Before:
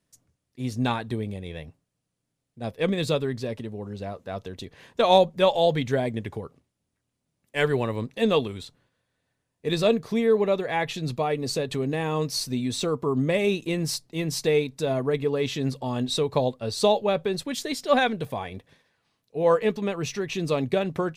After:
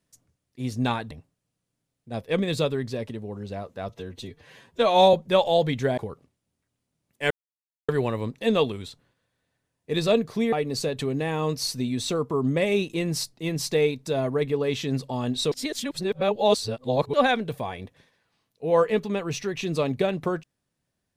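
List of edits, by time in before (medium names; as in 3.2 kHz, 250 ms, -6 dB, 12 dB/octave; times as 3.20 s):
1.11–1.61 s: delete
4.39–5.22 s: stretch 1.5×
6.06–6.31 s: delete
7.64 s: insert silence 0.58 s
10.28–11.25 s: delete
16.24–17.86 s: reverse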